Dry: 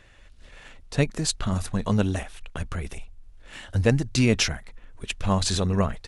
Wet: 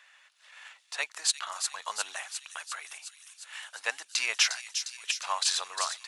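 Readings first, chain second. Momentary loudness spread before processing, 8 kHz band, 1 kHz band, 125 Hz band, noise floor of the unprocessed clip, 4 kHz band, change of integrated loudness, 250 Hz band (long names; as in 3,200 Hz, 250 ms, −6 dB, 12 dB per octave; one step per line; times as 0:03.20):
17 LU, +1.5 dB, −2.0 dB, below −40 dB, −50 dBFS, +1.0 dB, −5.5 dB, below −40 dB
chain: high-pass filter 900 Hz 24 dB per octave
delay with a high-pass on its return 355 ms, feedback 69%, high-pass 4,500 Hz, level −4.5 dB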